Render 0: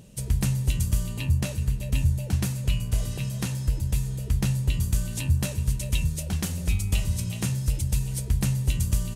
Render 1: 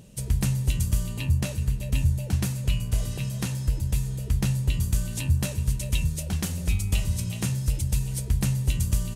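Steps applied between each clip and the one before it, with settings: no audible change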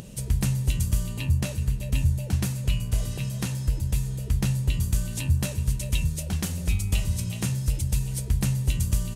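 upward compressor, threshold -34 dBFS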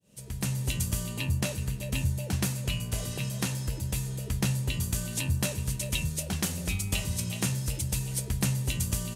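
fade-in on the opening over 0.67 s; high-pass 210 Hz 6 dB/octave; trim +2 dB

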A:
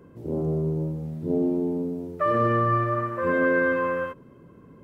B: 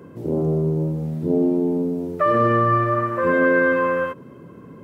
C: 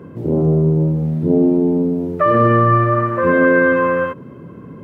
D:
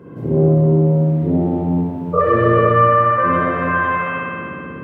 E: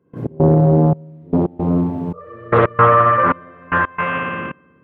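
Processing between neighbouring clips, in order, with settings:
high-pass 100 Hz; in parallel at -1 dB: compression, threshold -32 dBFS, peak gain reduction 12.5 dB; on the sum: trim +3 dB
tone controls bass +4 dB, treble -8 dB; trim +4 dB
spring tank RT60 2.5 s, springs 58 ms, chirp 80 ms, DRR -7.5 dB; spectral replace 2.17–2.69 s, 410–1400 Hz after; trim -4.5 dB
trance gate ".x.xxxx.." 113 bpm -24 dB; loudspeaker Doppler distortion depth 0.58 ms; trim +1.5 dB

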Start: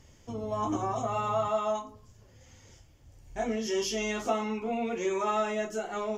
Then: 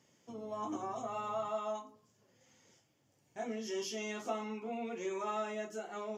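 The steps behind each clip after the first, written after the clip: high-pass 150 Hz 24 dB/octave; trim -8.5 dB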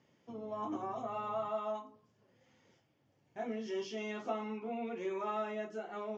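distance through air 190 m; trim +1 dB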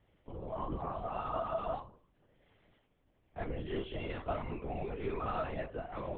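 LPC vocoder at 8 kHz whisper; trim +1 dB

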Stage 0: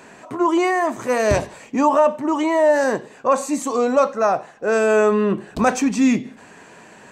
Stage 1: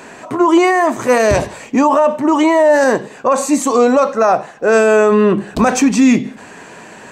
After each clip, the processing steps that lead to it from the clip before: hum notches 50/100/150/200 Hz; peak limiter -12 dBFS, peak gain reduction 6.5 dB; trim +8.5 dB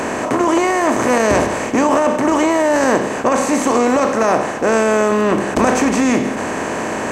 spectral levelling over time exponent 0.4; trim -8 dB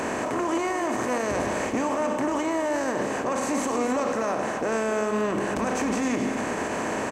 peak limiter -11 dBFS, peak gain reduction 9 dB; on a send: delay 263 ms -9 dB; on the sum: trim -7 dB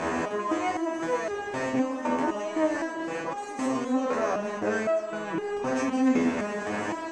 distance through air 72 m; resonator arpeggio 3.9 Hz 83–410 Hz; trim +9 dB

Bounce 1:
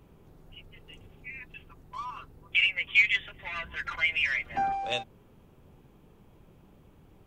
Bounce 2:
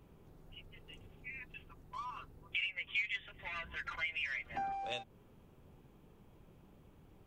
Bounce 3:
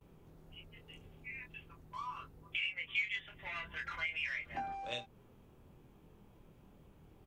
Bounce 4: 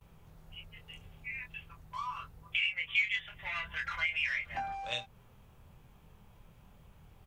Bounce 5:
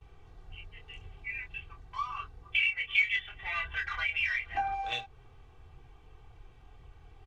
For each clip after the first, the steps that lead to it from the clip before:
compression 2:1, threshold -36 dBFS, peak gain reduction 11 dB; trim -4.5 dB
gate with hold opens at -55 dBFS; doubling 25 ms -5 dB; trim -1 dB
peaking EQ 320 Hz -14 dB 1.3 oct; trim +6 dB
low-pass 5.3 kHz 12 dB/octave; comb 2.6 ms, depth 93%; phaser 1.9 Hz, delay 4.8 ms, feedback 21%

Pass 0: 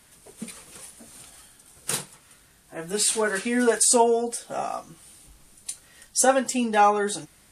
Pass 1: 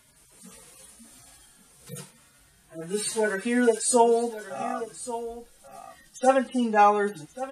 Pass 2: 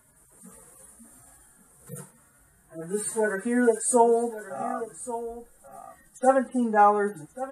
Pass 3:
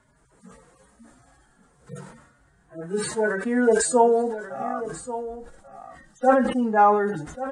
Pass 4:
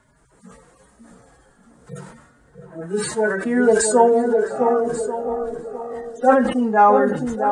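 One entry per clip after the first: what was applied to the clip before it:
harmonic-percussive separation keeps harmonic; delay 1136 ms -13.5 dB
high-order bell 3.7 kHz -15 dB
low-pass 6.2 kHz 24 dB/octave; decay stretcher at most 64 dB/s; trim +1.5 dB
band-passed feedback delay 659 ms, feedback 41%, band-pass 400 Hz, level -3.5 dB; trim +3.5 dB

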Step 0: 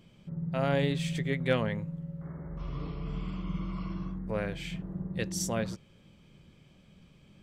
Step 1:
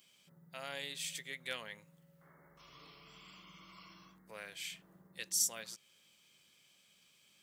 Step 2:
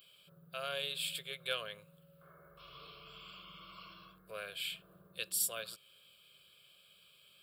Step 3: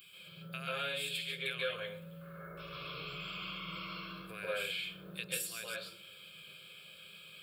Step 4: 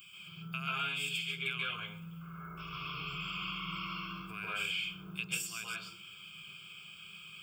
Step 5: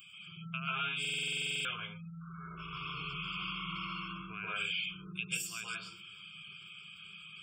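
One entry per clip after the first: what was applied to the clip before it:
in parallel at -1 dB: compression, threshold -39 dBFS, peak gain reduction 16.5 dB; on the sum: differentiator; trim +2 dB
static phaser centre 1.3 kHz, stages 8; trim +6.5 dB
compression 3:1, threshold -48 dBFS, peak gain reduction 14 dB; reverberation RT60 0.50 s, pre-delay 132 ms, DRR -4.5 dB; trim +4.5 dB
static phaser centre 2.7 kHz, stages 8; trim +5 dB
spectral gate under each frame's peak -25 dB strong; buffer glitch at 1.00 s, samples 2048, times 13

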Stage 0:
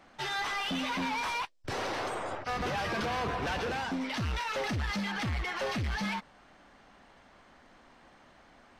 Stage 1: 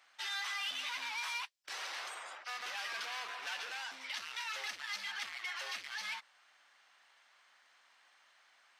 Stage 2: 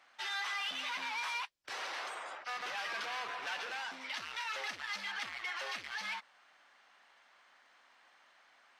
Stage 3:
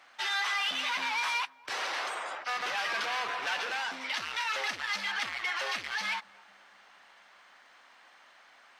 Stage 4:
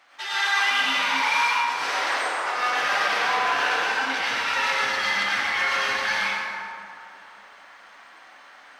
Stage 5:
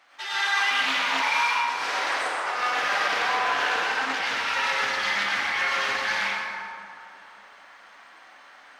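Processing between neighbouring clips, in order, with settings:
Bessel high-pass 2 kHz, order 2; trim -1 dB
tilt EQ -2.5 dB/octave; trim +4 dB
filtered feedback delay 239 ms, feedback 71%, low-pass 1 kHz, level -22 dB; trim +7 dB
plate-style reverb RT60 2.5 s, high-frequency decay 0.5×, pre-delay 80 ms, DRR -9.5 dB
loudspeaker Doppler distortion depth 0.22 ms; trim -1.5 dB

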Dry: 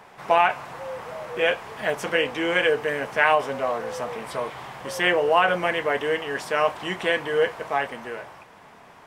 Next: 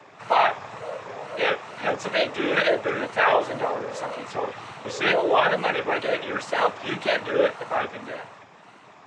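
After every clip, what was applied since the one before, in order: noise-vocoded speech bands 12; wow and flutter 150 cents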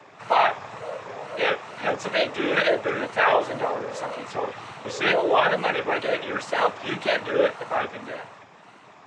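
no audible change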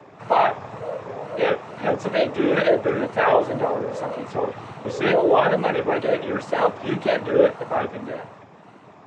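tilt shelf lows +7 dB, about 860 Hz; trim +1.5 dB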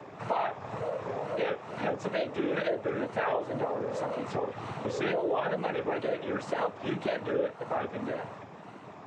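compression 3:1, threshold -31 dBFS, peak gain reduction 15 dB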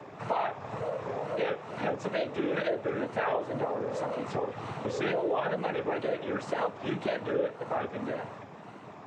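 reverberation RT60 2.1 s, pre-delay 3 ms, DRR 19.5 dB

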